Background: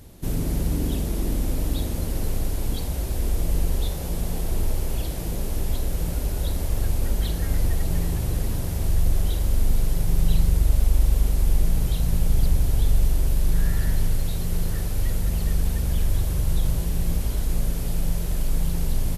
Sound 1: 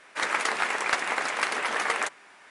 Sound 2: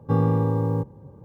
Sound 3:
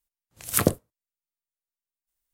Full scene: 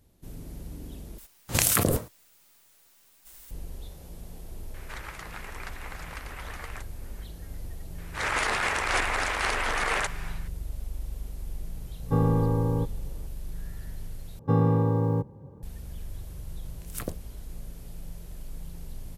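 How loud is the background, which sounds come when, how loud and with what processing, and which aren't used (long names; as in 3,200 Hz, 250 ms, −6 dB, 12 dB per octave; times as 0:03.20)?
background −16.5 dB
0:01.18: overwrite with 3 −7 dB + envelope flattener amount 100%
0:04.74: mix in 1 −15.5 dB + multiband upward and downward compressor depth 70%
0:07.98: mix in 1 −0.5 dB + transient designer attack −8 dB, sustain +10 dB
0:12.02: mix in 2 −2.5 dB
0:14.39: overwrite with 2 −1.5 dB
0:16.41: mix in 3 −14.5 dB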